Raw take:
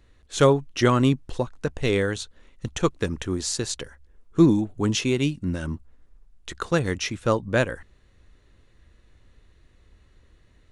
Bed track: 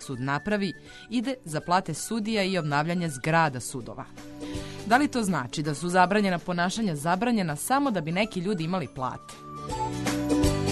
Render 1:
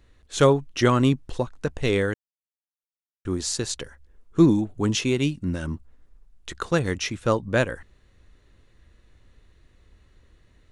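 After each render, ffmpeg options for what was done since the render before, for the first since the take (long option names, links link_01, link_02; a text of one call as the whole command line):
ffmpeg -i in.wav -filter_complex "[0:a]asplit=3[link_01][link_02][link_03];[link_01]atrim=end=2.14,asetpts=PTS-STARTPTS,afade=type=out:start_time=2.136:duration=0.004:curve=hsin[link_04];[link_02]atrim=start=2.14:end=3.25,asetpts=PTS-STARTPTS,volume=0[link_05];[link_03]atrim=start=3.25,asetpts=PTS-STARTPTS,afade=type=in:duration=0.004:curve=hsin[link_06];[link_04][link_05][link_06]concat=n=3:v=0:a=1" out.wav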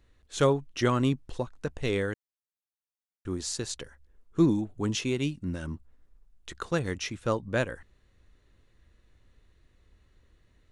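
ffmpeg -i in.wav -af "volume=-6dB" out.wav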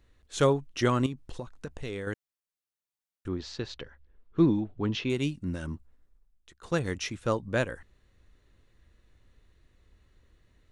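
ffmpeg -i in.wav -filter_complex "[0:a]asettb=1/sr,asplit=3[link_01][link_02][link_03];[link_01]atrim=end=1.064[link_04];[link_02]atrim=start=1.06:end=2.07,asetpts=PTS-STARTPTS,afade=type=in:duration=0.004:curve=qsin,afade=type=out:start_time=1.006:duration=0.004:curve=qsin,acompressor=threshold=-33dB:ratio=4:attack=3.2:release=140:knee=1:detection=peak[link_05];[link_03]atrim=start=2.066[link_06];[link_04][link_05]acrossfade=duration=0.004:curve1=hsin:curve2=qsin[link_07];[link_07][link_06]acrossfade=duration=0.004:curve1=qsin:curve2=hsin,asettb=1/sr,asplit=3[link_08][link_09][link_10];[link_08]atrim=end=3.284[link_11];[link_09]atrim=start=3.28:end=5.1,asetpts=PTS-STARTPTS,afade=type=in:duration=0.004:curve=qsin,afade=type=out:start_time=1.816:duration=0.004:curve=qsin,lowpass=frequency=4200:width=0.5412,lowpass=frequency=4200:width=1.3066[link_12];[link_10]atrim=start=5.096[link_13];[link_11][link_12]acrossfade=duration=0.004:curve1=hsin:curve2=qsin[link_14];[link_14][link_13]acrossfade=duration=0.004:curve1=qsin:curve2=hsin,asplit=2[link_15][link_16];[link_15]atrim=end=6.63,asetpts=PTS-STARTPTS,afade=type=out:start_time=5.71:duration=0.92:silence=0.0841395[link_17];[link_16]atrim=start=6.63,asetpts=PTS-STARTPTS,afade=type=in:duration=0.004:curve=hsin:silence=0.0841395[link_18];[link_17][link_18]concat=n=2:v=0:a=1" out.wav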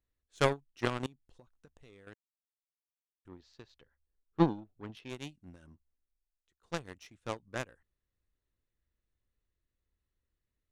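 ffmpeg -i in.wav -filter_complex "[0:a]aeval=exprs='0.299*(cos(1*acos(clip(val(0)/0.299,-1,1)))-cos(1*PI/2))+0.0944*(cos(3*acos(clip(val(0)/0.299,-1,1)))-cos(3*PI/2))':channel_layout=same,asplit=2[link_01][link_02];[link_02]asoftclip=type=tanh:threshold=-20.5dB,volume=-9dB[link_03];[link_01][link_03]amix=inputs=2:normalize=0" out.wav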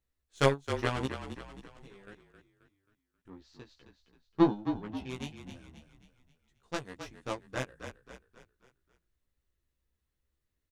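ffmpeg -i in.wav -filter_complex "[0:a]asplit=2[link_01][link_02];[link_02]adelay=15,volume=-2.5dB[link_03];[link_01][link_03]amix=inputs=2:normalize=0,asplit=6[link_04][link_05][link_06][link_07][link_08][link_09];[link_05]adelay=267,afreqshift=-34,volume=-9dB[link_10];[link_06]adelay=534,afreqshift=-68,volume=-15.9dB[link_11];[link_07]adelay=801,afreqshift=-102,volume=-22.9dB[link_12];[link_08]adelay=1068,afreqshift=-136,volume=-29.8dB[link_13];[link_09]adelay=1335,afreqshift=-170,volume=-36.7dB[link_14];[link_04][link_10][link_11][link_12][link_13][link_14]amix=inputs=6:normalize=0" out.wav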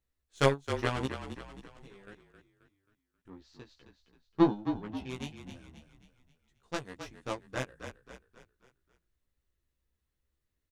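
ffmpeg -i in.wav -af anull out.wav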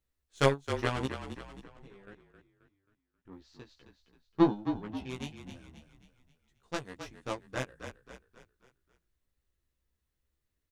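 ffmpeg -i in.wav -filter_complex "[0:a]asettb=1/sr,asplit=3[link_01][link_02][link_03];[link_01]atrim=end=1.634[link_04];[link_02]atrim=start=1.63:end=3.32,asetpts=PTS-STARTPTS,afade=type=in:duration=0.004:curve=qsin,afade=type=out:start_time=1.686:duration=0.004:curve=qsin,highshelf=frequency=3700:gain=-10[link_05];[link_03]atrim=start=3.316[link_06];[link_04][link_05]acrossfade=duration=0.004:curve1=hsin:curve2=qsin[link_07];[link_07][link_06]acrossfade=duration=0.004:curve1=qsin:curve2=hsin" out.wav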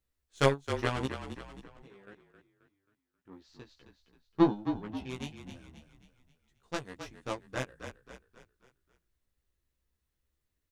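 ffmpeg -i in.wav -filter_complex "[0:a]asettb=1/sr,asplit=3[link_01][link_02][link_03];[link_01]atrim=end=1.824[link_04];[link_02]atrim=start=1.82:end=3.49,asetpts=PTS-STARTPTS,afade=type=in:duration=0.004:curve=qsin,afade=type=out:start_time=1.666:duration=0.004:curve=qsin,highpass=frequency=150:poles=1[link_05];[link_03]atrim=start=3.486[link_06];[link_04][link_05]acrossfade=duration=0.004:curve1=hsin:curve2=qsin[link_07];[link_07][link_06]acrossfade=duration=0.004:curve1=qsin:curve2=hsin" out.wav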